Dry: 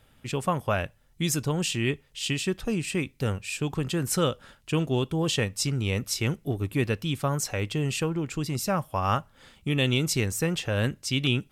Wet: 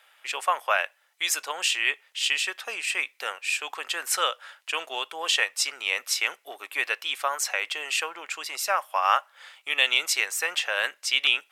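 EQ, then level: high-pass 650 Hz 24 dB/octave; peaking EQ 2 kHz +7 dB 1.7 oct; +2.0 dB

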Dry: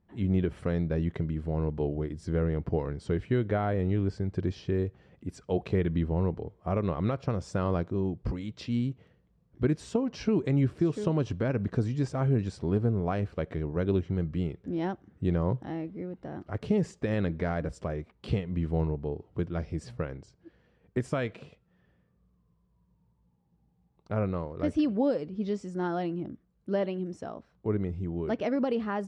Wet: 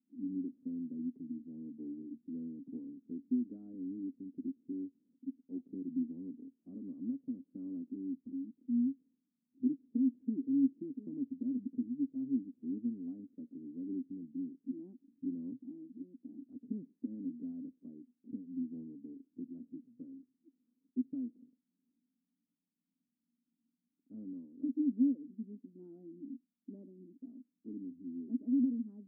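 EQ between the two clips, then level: Butterworth band-pass 260 Hz, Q 5.5; +1.5 dB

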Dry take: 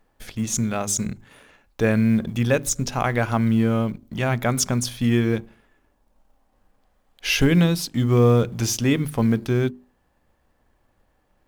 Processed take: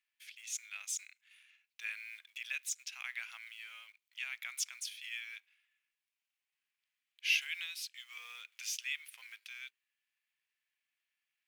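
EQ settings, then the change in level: ladder high-pass 2.1 kHz, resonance 55%; -4.5 dB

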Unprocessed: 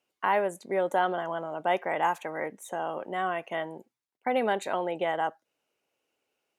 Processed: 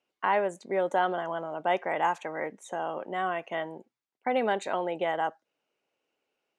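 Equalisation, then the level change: peaking EQ 82 Hz -9.5 dB 0.64 oct; dynamic bell 7.2 kHz, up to +6 dB, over -55 dBFS, Q 1; distance through air 79 m; 0.0 dB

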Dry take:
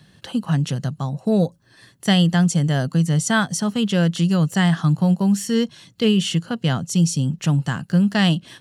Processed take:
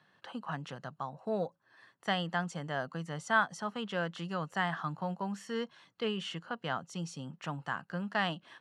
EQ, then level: band-pass filter 1.1 kHz, Q 1.3; -4.0 dB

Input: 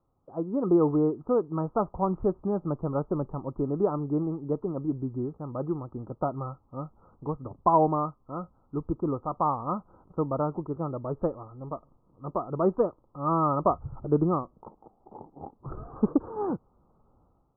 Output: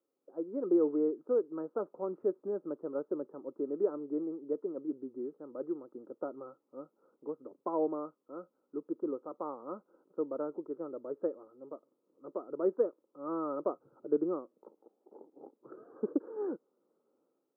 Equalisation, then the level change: high-pass 310 Hz 24 dB/octave; high-order bell 910 Hz -13.5 dB 1.1 oct; -3.5 dB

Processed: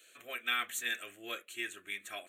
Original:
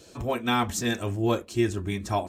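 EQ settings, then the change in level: high-pass 1.2 kHz 12 dB/octave; static phaser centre 2.2 kHz, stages 4; 0.0 dB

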